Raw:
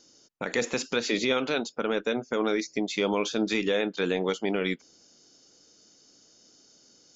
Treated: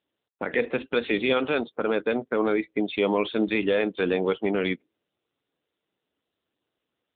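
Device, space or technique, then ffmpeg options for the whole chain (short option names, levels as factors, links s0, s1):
mobile call with aggressive noise cancelling: -af "highpass=f=150:p=1,afftdn=nr=28:nf=-44,volume=1.58" -ar 8000 -c:a libopencore_amrnb -b:a 7950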